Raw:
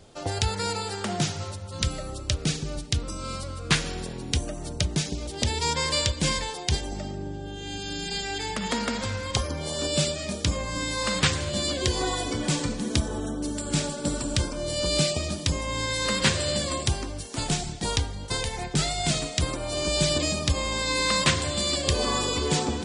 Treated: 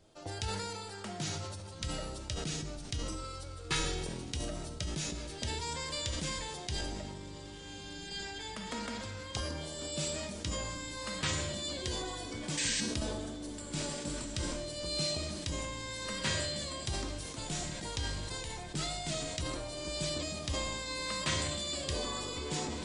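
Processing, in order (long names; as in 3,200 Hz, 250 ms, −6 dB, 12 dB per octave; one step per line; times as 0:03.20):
0:03.14–0:04.07: comb filter 2.3 ms, depth 65%
0:12.57–0:12.81: sound drawn into the spectrogram noise 1,500–8,700 Hz −21 dBFS
tuned comb filter 320 Hz, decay 0.59 s, mix 80%
feedback delay with all-pass diffusion 1,526 ms, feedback 62%, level −15.5 dB
level that may fall only so fast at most 24 dB per second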